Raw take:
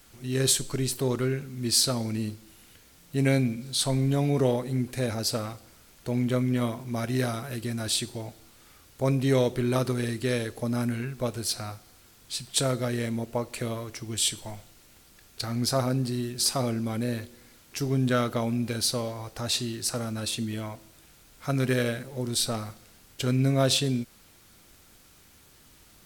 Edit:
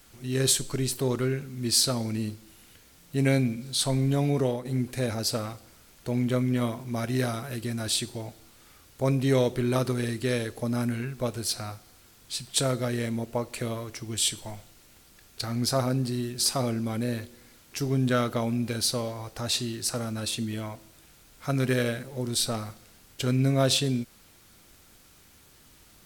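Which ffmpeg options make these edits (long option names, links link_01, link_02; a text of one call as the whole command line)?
ffmpeg -i in.wav -filter_complex "[0:a]asplit=2[link_01][link_02];[link_01]atrim=end=4.65,asetpts=PTS-STARTPTS,afade=type=out:start_time=4.3:duration=0.35:silence=0.446684[link_03];[link_02]atrim=start=4.65,asetpts=PTS-STARTPTS,afade=type=in:duration=0.004:curve=hsin:silence=0.446684[link_04];[link_03][link_04]concat=n=2:v=0:a=1" out.wav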